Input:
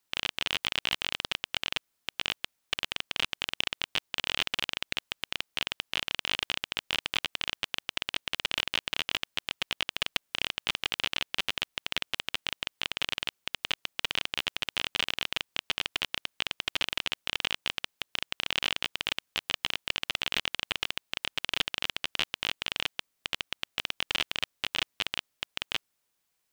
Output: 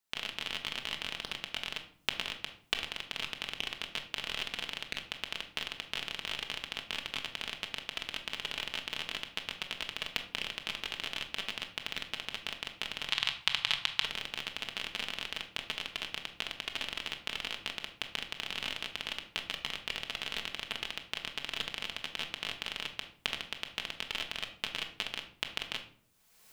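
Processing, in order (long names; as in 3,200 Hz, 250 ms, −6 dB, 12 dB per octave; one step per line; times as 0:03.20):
camcorder AGC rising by 37 dB per second
0:13.09–0:14.02: octave-band graphic EQ 125/250/500/1,000/2,000/4,000/8,000 Hz +7/−6/−5/+8/+4/+9/+4 dB
rectangular room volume 830 cubic metres, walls furnished, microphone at 1.5 metres
level −8.5 dB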